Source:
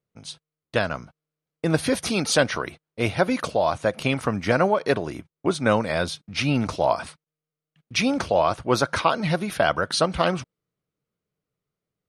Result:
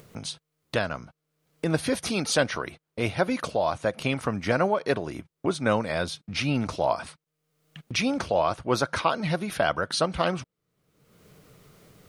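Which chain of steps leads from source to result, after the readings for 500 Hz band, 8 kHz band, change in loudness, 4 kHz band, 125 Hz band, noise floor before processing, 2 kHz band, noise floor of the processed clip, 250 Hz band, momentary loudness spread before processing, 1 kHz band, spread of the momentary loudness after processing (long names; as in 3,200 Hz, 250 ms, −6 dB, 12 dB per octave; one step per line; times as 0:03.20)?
−3.5 dB, −3.0 dB, −3.5 dB, −3.0 dB, −3.5 dB, below −85 dBFS, −3.5 dB, −83 dBFS, −3.5 dB, 8 LU, −3.5 dB, 9 LU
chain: upward compression, threshold −23 dBFS
level −3.5 dB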